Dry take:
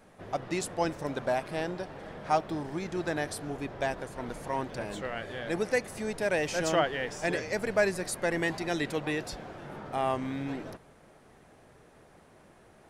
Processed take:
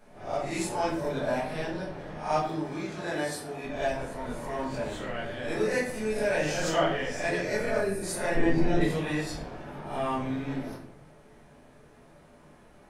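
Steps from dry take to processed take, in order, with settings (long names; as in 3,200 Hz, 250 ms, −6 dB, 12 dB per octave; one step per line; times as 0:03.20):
peak hold with a rise ahead of every peak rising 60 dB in 0.46 s
0:02.46–0:03.63: high-pass filter 140 Hz → 360 Hz 6 dB per octave
0:07.77–0:08.03: gain on a spectral selection 490–8,100 Hz −10 dB
0:08.34–0:08.81: spectral tilt −3.5 dB per octave
rectangular room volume 74 cubic metres, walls mixed, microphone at 1.4 metres
level −7 dB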